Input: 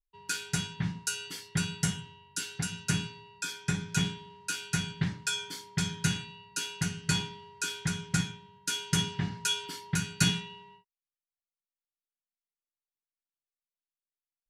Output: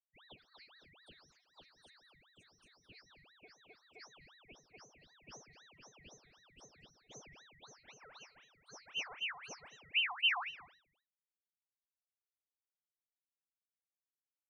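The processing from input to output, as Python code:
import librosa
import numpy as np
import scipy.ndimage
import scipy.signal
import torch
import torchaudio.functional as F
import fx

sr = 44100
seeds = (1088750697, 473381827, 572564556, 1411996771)

y = fx.filter_sweep_highpass(x, sr, from_hz=710.0, to_hz=130.0, start_s=7.34, end_s=9.89, q=1.2)
y = fx.spec_topn(y, sr, count=2)
y = fx.vocoder(y, sr, bands=32, carrier='square', carrier_hz=146.0)
y = y + 10.0 ** (-16.0 / 20.0) * np.pad(y, (int(215 * sr / 1000.0), 0))[:len(y)]
y = fx.ring_lfo(y, sr, carrier_hz=1900.0, swing_pct=55, hz=3.9)
y = y * 10.0 ** (-1.0 / 20.0)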